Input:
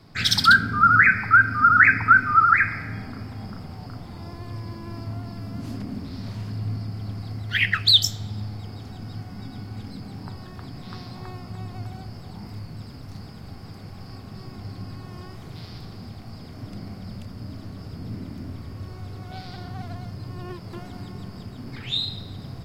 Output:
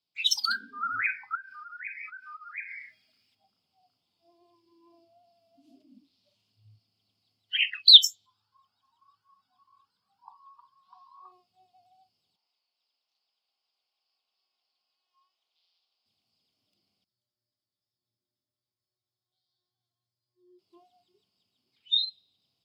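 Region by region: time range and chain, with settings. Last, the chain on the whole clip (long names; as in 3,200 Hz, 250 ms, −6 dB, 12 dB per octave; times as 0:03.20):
0:01.35–0:03.35: high shelf with overshoot 1,500 Hz +7.5 dB, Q 1.5 + downward compressor 8 to 1, threshold −23 dBFS
0:08.26–0:11.32: flat-topped bell 1,200 Hz +16 dB 1.2 octaves + flanger whose copies keep moving one way rising 1.4 Hz
0:12.36–0:16.06: Chebyshev band-pass filter 720–7,100 Hz + high-frequency loss of the air 89 metres
0:17.04–0:20.59: Butterworth band-reject 2,600 Hz, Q 2.1 + tuned comb filter 120 Hz, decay 0.38 s, harmonics odd, mix 90%
whole clip: noise reduction from a noise print of the clip's start 26 dB; high-pass filter 690 Hz 6 dB per octave; high shelf with overshoot 2,300 Hz +9 dB, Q 3; level −10.5 dB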